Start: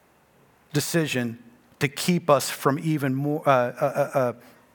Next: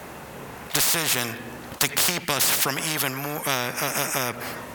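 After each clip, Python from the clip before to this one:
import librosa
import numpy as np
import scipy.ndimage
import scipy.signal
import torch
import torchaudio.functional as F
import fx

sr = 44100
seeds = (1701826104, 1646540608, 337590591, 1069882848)

y = fx.spectral_comp(x, sr, ratio=4.0)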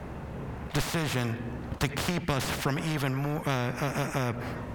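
y = fx.riaa(x, sr, side='playback')
y = y * 10.0 ** (-5.0 / 20.0)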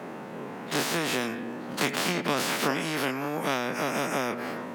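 y = fx.spec_dilate(x, sr, span_ms=60)
y = scipy.signal.sosfilt(scipy.signal.butter(4, 200.0, 'highpass', fs=sr, output='sos'), y)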